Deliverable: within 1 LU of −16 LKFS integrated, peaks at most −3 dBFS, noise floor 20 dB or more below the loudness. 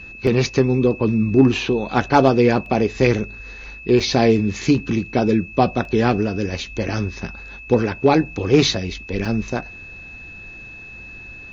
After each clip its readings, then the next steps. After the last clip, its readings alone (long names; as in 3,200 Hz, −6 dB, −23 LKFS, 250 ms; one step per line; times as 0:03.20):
number of dropouts 5; longest dropout 1.7 ms; interfering tone 2,600 Hz; level of the tone −36 dBFS; integrated loudness −19.0 LKFS; sample peak −2.5 dBFS; target loudness −16.0 LKFS
→ repair the gap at 0:00.27/0:02.66/0:04.00/0:05.85/0:09.25, 1.7 ms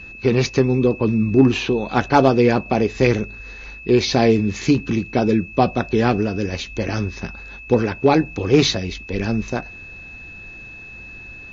number of dropouts 0; interfering tone 2,600 Hz; level of the tone −36 dBFS
→ notch filter 2,600 Hz, Q 30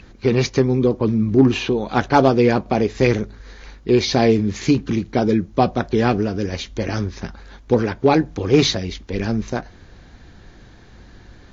interfering tone none found; integrated loudness −19.0 LKFS; sample peak −2.5 dBFS; target loudness −16.0 LKFS
→ level +3 dB
brickwall limiter −3 dBFS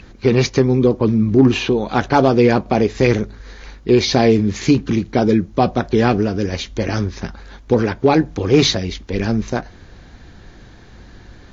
integrated loudness −16.5 LKFS; sample peak −3.0 dBFS; background noise floor −43 dBFS